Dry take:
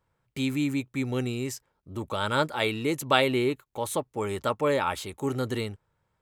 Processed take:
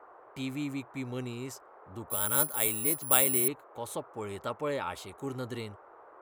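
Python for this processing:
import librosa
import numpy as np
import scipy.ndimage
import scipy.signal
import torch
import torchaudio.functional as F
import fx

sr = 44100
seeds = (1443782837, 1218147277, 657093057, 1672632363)

y = fx.dmg_noise_band(x, sr, seeds[0], low_hz=360.0, high_hz=1300.0, level_db=-46.0)
y = fx.resample_bad(y, sr, factor=4, down='filtered', up='zero_stuff', at=(2.1, 3.48))
y = y * 10.0 ** (-8.0 / 20.0)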